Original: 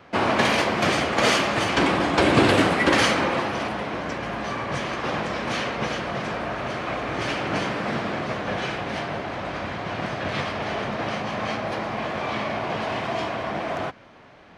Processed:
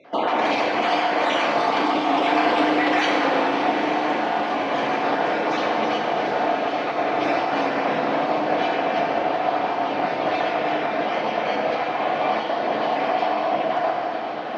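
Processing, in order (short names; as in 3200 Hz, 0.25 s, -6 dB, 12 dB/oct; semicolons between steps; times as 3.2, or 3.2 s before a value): random spectral dropouts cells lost 26%; Chebyshev band-pass 290–4000 Hz, order 2; bell 720 Hz +8 dB 0.6 oct; reverse; upward compressor, threshold -25 dBFS; reverse; limiter -15 dBFS, peak gain reduction 9.5 dB; on a send: diffused feedback echo 0.907 s, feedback 67%, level -9 dB; on the sum: FDN reverb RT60 2.9 s, high-frequency decay 0.6×, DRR 0 dB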